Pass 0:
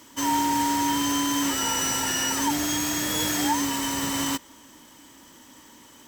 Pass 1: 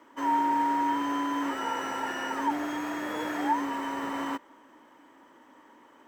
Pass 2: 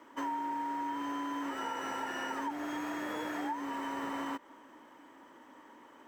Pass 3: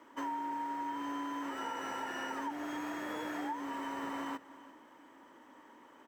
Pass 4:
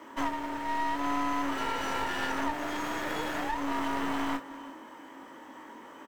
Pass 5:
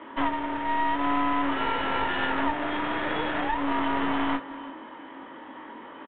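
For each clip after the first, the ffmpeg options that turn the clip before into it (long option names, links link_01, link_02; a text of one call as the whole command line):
ffmpeg -i in.wav -filter_complex "[0:a]acrossover=split=280 2000:gain=0.1 1 0.0631[link_01][link_02][link_03];[link_01][link_02][link_03]amix=inputs=3:normalize=0" out.wav
ffmpeg -i in.wav -af "acompressor=threshold=-34dB:ratio=6" out.wav
ffmpeg -i in.wav -af "aecho=1:1:345:0.119,volume=-2dB" out.wav
ffmpeg -i in.wav -af "aecho=1:1:22|54:0.562|0.178,aeval=exprs='clip(val(0),-1,0.00376)':channel_layout=same,volume=9dB" out.wav
ffmpeg -i in.wav -af "aresample=8000,aresample=44100,volume=5dB" out.wav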